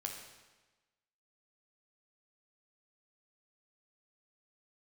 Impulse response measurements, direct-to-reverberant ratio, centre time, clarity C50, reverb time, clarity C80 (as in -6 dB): 1.5 dB, 41 ms, 4.5 dB, 1.2 s, 6.5 dB